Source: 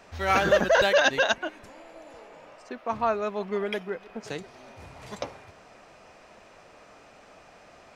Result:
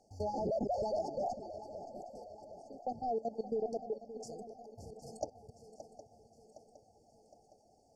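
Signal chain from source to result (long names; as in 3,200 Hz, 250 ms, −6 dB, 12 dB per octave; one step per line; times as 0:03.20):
pitch shift by two crossfaded delay taps +1.5 semitones
soft clipping −22.5 dBFS, distortion −10 dB
reverb reduction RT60 1.1 s
output level in coarse steps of 17 dB
treble cut that deepens with the level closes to 1,300 Hz, closed at −27.5 dBFS
linear-phase brick-wall band-stop 870–4,400 Hz
feedback echo with a long and a short gap by turns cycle 763 ms, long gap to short 3 to 1, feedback 52%, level −13 dB
level +1.5 dB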